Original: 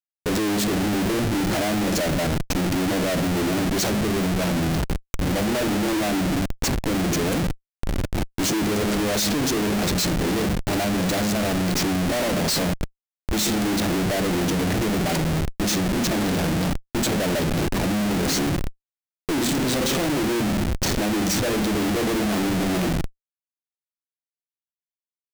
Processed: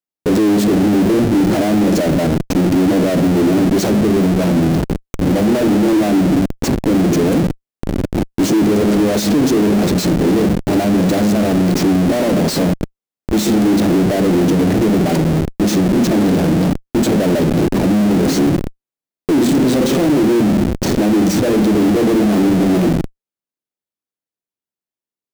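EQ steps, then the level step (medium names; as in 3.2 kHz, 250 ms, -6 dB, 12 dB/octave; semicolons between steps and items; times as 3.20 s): peaking EQ 290 Hz +11.5 dB 2.7 oct; 0.0 dB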